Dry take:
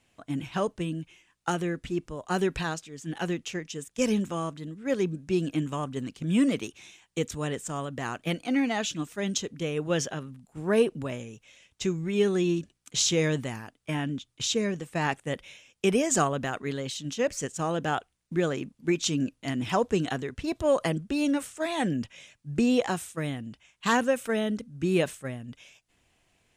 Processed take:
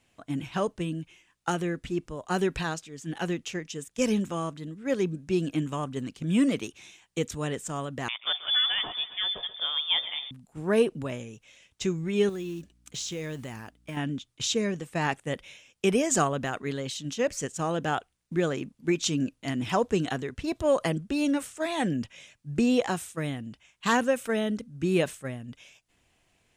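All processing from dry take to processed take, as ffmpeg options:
-filter_complex "[0:a]asettb=1/sr,asplit=3[a][b][c];[a]atrim=end=8.084[d];[b]atrim=start=8.08:end=10.31,asetpts=PTS-STARTPTS,afade=t=in:d=0.004:c=qsin,afade=t=out:st=2.226:d=0.004:c=qsin,aecho=1:1:133|266|399|532|665|798:0.168|0.0974|0.0565|0.0328|0.019|0.011,atrim=end_sample=98343,lowpass=f=3.1k:t=q:w=0.5098,lowpass=f=3.1k:t=q:w=0.6013,lowpass=f=3.1k:t=q:w=0.9,lowpass=f=3.1k:t=q:w=2.563,afreqshift=-3700[e];[c]atrim=start=10.306[f];[d][e]acrossfade=d=0.004:c1=hsin:c2=qsin[g];[g][f]acrossfade=d=0.004:c1=qsin:c2=hsin,asettb=1/sr,asplit=3[h][i][j];[h]atrim=end=12.294[k];[i]atrim=start=12.29:end=13.97,asetpts=PTS-STARTPTS,afade=t=in:d=0.004:c=qsin,afade=t=out:st=1.676:d=0.004:c=qsin,acrusher=bits=6:mode=log:mix=0:aa=0.000001,acompressor=threshold=-36dB:ratio=2.5:attack=3.2:release=140:knee=1:detection=peak,aeval=exprs='val(0)+0.000708*(sin(2*PI*60*n/s)+sin(2*PI*2*60*n/s)/2+sin(2*PI*3*60*n/s)/3+sin(2*PI*4*60*n/s)/4+sin(2*PI*5*60*n/s)/5)':c=same[l];[j]atrim=start=13.966[m];[k][l]acrossfade=d=0.004:c1=hsin:c2=qsin[n];[n][m]acrossfade=d=0.004:c1=qsin:c2=hsin"

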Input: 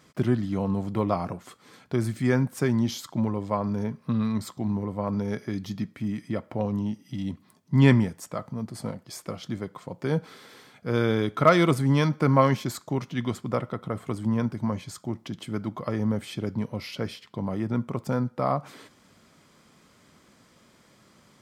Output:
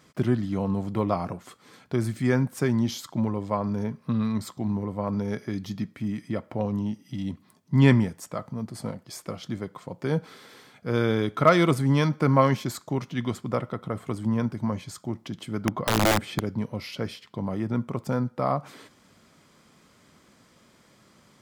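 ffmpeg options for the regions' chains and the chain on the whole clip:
-filter_complex "[0:a]asettb=1/sr,asplit=3[a][b][c];[a]atrim=end=15.654[d];[b]atrim=start=15.65:end=16.4,asetpts=PTS-STARTPTS,afade=t=in:d=0.004:c=qsin,afade=t=out:st=0.746:d=0.004:c=qsin,highshelf=f=3.7k:g=-10.5,acontrast=40,aeval=exprs='(mod(5.31*val(0)+1,2)-1)/5.31':c=same[e];[c]atrim=start=16.396[f];[d][e]acrossfade=d=0.004:c1=hsin:c2=qsin[g];[g][f]acrossfade=d=0.004:c1=qsin:c2=hsin"

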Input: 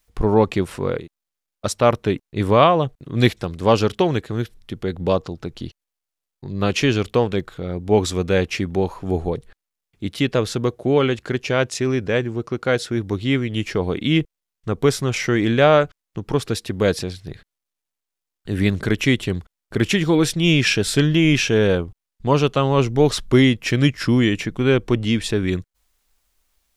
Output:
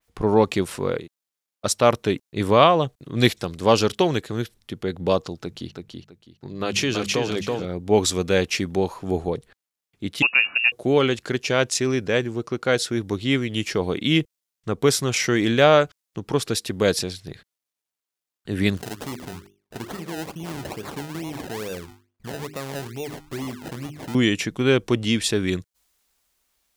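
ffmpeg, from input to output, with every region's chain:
-filter_complex "[0:a]asettb=1/sr,asplit=3[a][b][c];[a]atrim=end=5.394[d];[b]atrim=start=5.39:end=7.65,asetpts=PTS-STARTPTS,afade=t=in:d=0.004:c=qsin,afade=t=out:st=2.256:d=0.004:c=qsin,bandreject=f=50:t=h:w=6,bandreject=f=100:t=h:w=6,bandreject=f=150:t=h:w=6,bandreject=f=200:t=h:w=6,aecho=1:1:328|656|984:0.596|0.149|0.0372,atrim=end_sample=99666,acompressor=threshold=-20dB:ratio=2:attack=3.2:release=140:knee=1:detection=peak[e];[c]atrim=start=7.646[f];[d][e]acrossfade=d=0.004:c1=hsin:c2=qsin[g];[g][f]acrossfade=d=0.004:c1=qsin:c2=hsin,asettb=1/sr,asplit=3[h][i][j];[h]atrim=end=10.224[k];[i]atrim=start=10.22:end=10.72,asetpts=PTS-STARTPTS,afade=t=in:d=0.004:c=qsin,afade=t=out:st=0.496:d=0.004:c=qsin,bandreject=f=298.6:t=h:w=4,bandreject=f=597.2:t=h:w=4,bandreject=f=895.8:t=h:w=4,bandreject=f=1.1944k:t=h:w=4,lowpass=f=2.5k:t=q:w=0.5098,lowpass=f=2.5k:t=q:w=0.6013,lowpass=f=2.5k:t=q:w=0.9,lowpass=f=2.5k:t=q:w=2.563,afreqshift=-2900[l];[j]atrim=start=10.716[m];[k][l]acrossfade=d=0.004:c1=hsin:c2=qsin[n];[n][m]acrossfade=d=0.004:c1=qsin:c2=hsin,asettb=1/sr,asplit=3[o][p][q];[o]atrim=end=18.774[r];[p]atrim=start=18.77:end=24.15,asetpts=PTS-STARTPTS,afade=t=in:d=0.004:c=qsin,afade=t=out:st=5.376:d=0.004:c=qsin,bandreject=f=50:t=h:w=6,bandreject=f=100:t=h:w=6,bandreject=f=150:t=h:w=6,bandreject=f=200:t=h:w=6,bandreject=f=250:t=h:w=6,bandreject=f=300:t=h:w=6,bandreject=f=350:t=h:w=6,bandreject=f=400:t=h:w=6,acompressor=threshold=-33dB:ratio=2.5:attack=3.2:release=140:knee=1:detection=peak,acrusher=samples=27:mix=1:aa=0.000001:lfo=1:lforange=27:lforate=2.3[s];[q]atrim=start=24.146[t];[r][s]acrossfade=d=0.004:c1=hsin:c2=qsin[u];[u][t]acrossfade=d=0.004:c1=qsin:c2=hsin,highpass=f=130:p=1,adynamicequalizer=threshold=0.0158:dfrequency=3400:dqfactor=0.7:tfrequency=3400:tqfactor=0.7:attack=5:release=100:ratio=0.375:range=3.5:mode=boostabove:tftype=highshelf,volume=-1dB"

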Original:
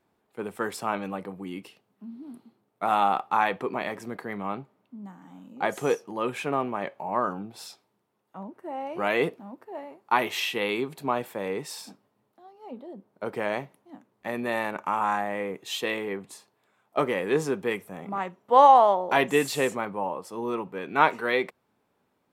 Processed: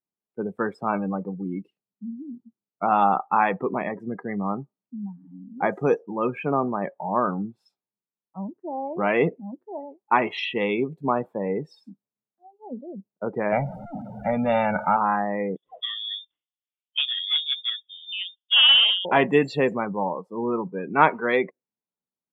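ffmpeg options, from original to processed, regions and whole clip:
-filter_complex "[0:a]asettb=1/sr,asplit=3[a][b][c];[a]atrim=end=13.524[d];[b]atrim=start=13.52:end=14.97,asetpts=PTS-STARTPTS,afade=t=in:d=0.004:c=qsin,afade=t=out:st=1.446:d=0.004:c=qsin,aeval=exprs='val(0)+0.5*0.0158*sgn(val(0))':c=same,aecho=1:1:1.4:0.98,atrim=end_sample=63945[e];[c]atrim=start=14.966[f];[d][e]acrossfade=d=0.004:c1=hsin:c2=qsin[g];[g][f]acrossfade=d=0.004:c1=qsin:c2=hsin,asettb=1/sr,asplit=3[h][i][j];[h]atrim=end=15.564[k];[i]atrim=start=15.56:end=19.05,asetpts=PTS-STARTPTS,afade=t=in:d=0.004:c=qsin,afade=t=out:st=3.486:d=0.004:c=qsin,equalizer=f=2.4k:t=o:w=1.2:g=-12,acrusher=bits=2:mode=log:mix=0:aa=0.000001,lowpass=f=3.2k:t=q:w=0.5098,lowpass=f=3.2k:t=q:w=0.6013,lowpass=f=3.2k:t=q:w=0.9,lowpass=f=3.2k:t=q:w=2.563,afreqshift=-3800[l];[j]atrim=start=19.046[m];[k][l]acrossfade=d=0.004:c1=hsin:c2=qsin[n];[n][m]acrossfade=d=0.004:c1=qsin:c2=hsin,highshelf=f=3.4k:g=-6.5,afftdn=nr=32:nf=-35,equalizer=f=180:t=o:w=0.81:g=6,volume=3.5dB"

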